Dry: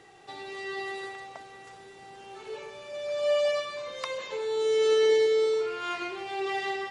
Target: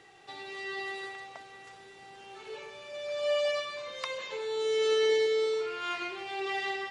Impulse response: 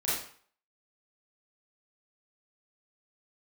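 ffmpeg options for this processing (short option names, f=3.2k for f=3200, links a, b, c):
-af "equalizer=f=2.8k:t=o:w=2.4:g=5,volume=-4.5dB"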